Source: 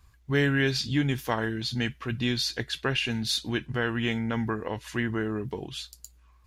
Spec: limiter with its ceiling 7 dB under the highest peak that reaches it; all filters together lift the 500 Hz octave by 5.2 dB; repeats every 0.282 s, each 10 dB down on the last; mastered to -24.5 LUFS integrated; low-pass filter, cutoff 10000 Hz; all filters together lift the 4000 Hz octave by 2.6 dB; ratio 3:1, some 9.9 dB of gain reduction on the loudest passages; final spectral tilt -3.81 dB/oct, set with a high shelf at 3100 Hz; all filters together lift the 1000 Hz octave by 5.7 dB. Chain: LPF 10000 Hz; bell 500 Hz +5.5 dB; bell 1000 Hz +6 dB; high shelf 3100 Hz -7 dB; bell 4000 Hz +8 dB; compressor 3:1, threshold -31 dBFS; limiter -24 dBFS; feedback echo 0.282 s, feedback 32%, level -10 dB; gain +9.5 dB

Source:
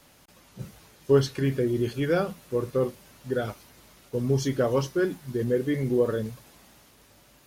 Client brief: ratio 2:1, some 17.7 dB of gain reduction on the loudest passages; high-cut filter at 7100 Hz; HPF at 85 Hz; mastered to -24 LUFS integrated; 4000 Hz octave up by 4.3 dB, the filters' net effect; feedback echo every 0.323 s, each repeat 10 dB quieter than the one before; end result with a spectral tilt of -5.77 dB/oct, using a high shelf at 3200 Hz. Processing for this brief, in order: HPF 85 Hz; LPF 7100 Hz; high shelf 3200 Hz -4 dB; bell 4000 Hz +9 dB; compressor 2:1, threshold -48 dBFS; feedback echo 0.323 s, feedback 32%, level -10 dB; gain +17.5 dB

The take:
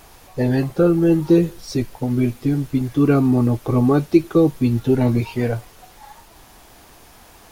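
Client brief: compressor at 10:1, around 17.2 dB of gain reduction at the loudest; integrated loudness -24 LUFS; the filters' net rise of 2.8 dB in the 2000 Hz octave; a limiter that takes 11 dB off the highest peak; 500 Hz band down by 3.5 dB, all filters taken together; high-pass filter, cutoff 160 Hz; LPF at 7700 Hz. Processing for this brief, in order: HPF 160 Hz; LPF 7700 Hz; bell 500 Hz -5 dB; bell 2000 Hz +4 dB; compressor 10:1, threshold -29 dBFS; gain +15 dB; limiter -14.5 dBFS

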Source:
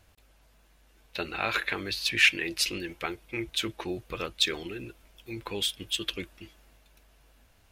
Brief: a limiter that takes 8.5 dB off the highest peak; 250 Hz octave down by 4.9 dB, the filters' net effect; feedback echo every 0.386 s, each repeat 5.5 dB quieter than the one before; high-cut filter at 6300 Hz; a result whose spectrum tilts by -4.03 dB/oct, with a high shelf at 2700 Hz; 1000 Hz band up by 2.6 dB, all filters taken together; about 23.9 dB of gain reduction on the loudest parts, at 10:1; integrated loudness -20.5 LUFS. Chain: LPF 6300 Hz; bell 250 Hz -8.5 dB; bell 1000 Hz +5.5 dB; high shelf 2700 Hz -6.5 dB; compressor 10:1, threshold -43 dBFS; limiter -36 dBFS; feedback echo 0.386 s, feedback 53%, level -5.5 dB; gain +27.5 dB

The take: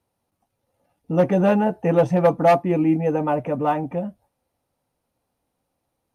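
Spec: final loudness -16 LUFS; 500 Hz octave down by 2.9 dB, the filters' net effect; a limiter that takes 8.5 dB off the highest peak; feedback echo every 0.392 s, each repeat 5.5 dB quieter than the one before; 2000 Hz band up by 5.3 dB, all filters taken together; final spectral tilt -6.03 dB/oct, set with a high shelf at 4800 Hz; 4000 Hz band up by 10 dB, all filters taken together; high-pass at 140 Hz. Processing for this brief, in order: HPF 140 Hz; bell 500 Hz -4 dB; bell 2000 Hz +3.5 dB; bell 4000 Hz +9 dB; high shelf 4800 Hz +7 dB; limiter -12 dBFS; feedback echo 0.392 s, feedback 53%, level -5.5 dB; gain +6.5 dB

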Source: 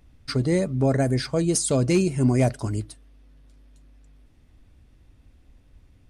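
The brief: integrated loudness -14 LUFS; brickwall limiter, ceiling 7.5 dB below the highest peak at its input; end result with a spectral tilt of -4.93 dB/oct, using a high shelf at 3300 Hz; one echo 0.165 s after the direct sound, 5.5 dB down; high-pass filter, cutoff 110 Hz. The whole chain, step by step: HPF 110 Hz; high shelf 3300 Hz +4.5 dB; limiter -15 dBFS; echo 0.165 s -5.5 dB; gain +11 dB

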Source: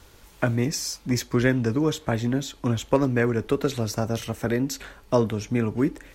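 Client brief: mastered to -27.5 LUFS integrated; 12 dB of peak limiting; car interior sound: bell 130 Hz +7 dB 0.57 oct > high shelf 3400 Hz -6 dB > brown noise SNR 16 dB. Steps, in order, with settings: limiter -18.5 dBFS; bell 130 Hz +7 dB 0.57 oct; high shelf 3400 Hz -6 dB; brown noise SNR 16 dB

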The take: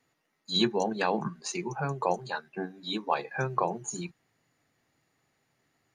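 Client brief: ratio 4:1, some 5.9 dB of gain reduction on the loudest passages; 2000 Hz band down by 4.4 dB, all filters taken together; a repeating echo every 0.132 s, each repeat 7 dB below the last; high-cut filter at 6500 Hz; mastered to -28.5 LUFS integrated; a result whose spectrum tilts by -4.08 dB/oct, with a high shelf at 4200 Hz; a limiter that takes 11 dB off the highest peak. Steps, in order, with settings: LPF 6500 Hz; bell 2000 Hz -7.5 dB; high shelf 4200 Hz +5.5 dB; compressor 4:1, threshold -28 dBFS; limiter -27 dBFS; feedback echo 0.132 s, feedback 45%, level -7 dB; gain +9 dB

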